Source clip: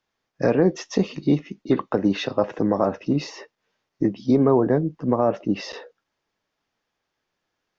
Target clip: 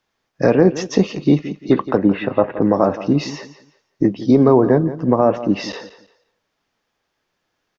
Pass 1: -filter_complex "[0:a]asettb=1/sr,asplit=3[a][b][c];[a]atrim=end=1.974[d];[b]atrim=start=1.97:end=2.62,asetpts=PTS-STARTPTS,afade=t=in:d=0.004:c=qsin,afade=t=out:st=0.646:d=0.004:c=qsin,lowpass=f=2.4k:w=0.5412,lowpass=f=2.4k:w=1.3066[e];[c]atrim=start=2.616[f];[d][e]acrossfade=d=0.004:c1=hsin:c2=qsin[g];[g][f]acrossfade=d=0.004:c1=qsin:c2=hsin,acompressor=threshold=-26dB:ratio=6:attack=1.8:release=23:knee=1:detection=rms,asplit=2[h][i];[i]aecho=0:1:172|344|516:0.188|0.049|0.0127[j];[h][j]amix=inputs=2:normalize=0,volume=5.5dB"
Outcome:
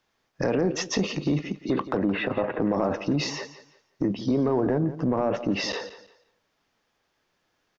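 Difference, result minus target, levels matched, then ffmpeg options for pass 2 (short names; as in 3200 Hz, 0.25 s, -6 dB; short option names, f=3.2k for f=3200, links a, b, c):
compressor: peak gain reduction +13.5 dB
-filter_complex "[0:a]asettb=1/sr,asplit=3[a][b][c];[a]atrim=end=1.974[d];[b]atrim=start=1.97:end=2.62,asetpts=PTS-STARTPTS,afade=t=in:d=0.004:c=qsin,afade=t=out:st=0.646:d=0.004:c=qsin,lowpass=f=2.4k:w=0.5412,lowpass=f=2.4k:w=1.3066[e];[c]atrim=start=2.616[f];[d][e]acrossfade=d=0.004:c1=hsin:c2=qsin[g];[g][f]acrossfade=d=0.004:c1=qsin:c2=hsin,asplit=2[h][i];[i]aecho=0:1:172|344|516:0.188|0.049|0.0127[j];[h][j]amix=inputs=2:normalize=0,volume=5.5dB"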